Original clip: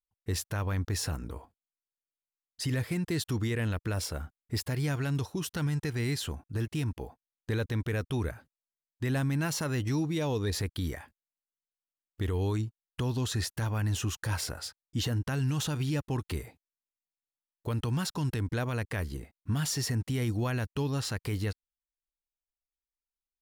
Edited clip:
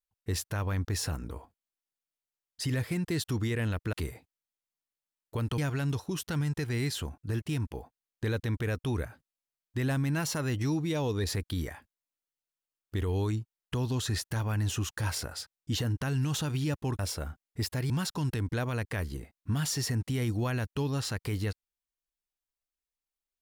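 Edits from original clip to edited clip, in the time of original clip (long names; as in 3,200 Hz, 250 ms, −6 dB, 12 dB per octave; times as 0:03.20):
0:03.93–0:04.84: swap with 0:16.25–0:17.90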